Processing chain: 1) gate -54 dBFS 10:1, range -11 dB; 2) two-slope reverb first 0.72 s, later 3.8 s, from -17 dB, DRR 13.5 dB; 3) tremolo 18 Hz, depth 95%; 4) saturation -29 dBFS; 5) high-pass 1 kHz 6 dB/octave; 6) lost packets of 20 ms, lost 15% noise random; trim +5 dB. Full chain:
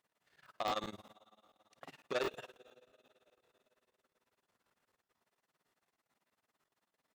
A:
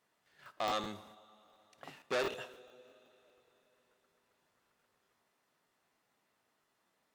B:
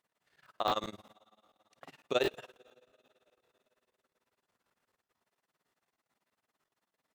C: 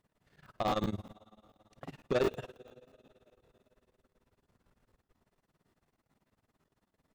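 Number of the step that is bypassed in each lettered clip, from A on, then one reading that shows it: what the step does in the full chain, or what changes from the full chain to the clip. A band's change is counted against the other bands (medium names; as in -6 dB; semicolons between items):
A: 3, 8 kHz band +2.0 dB; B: 4, distortion -8 dB; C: 5, 125 Hz band +13.5 dB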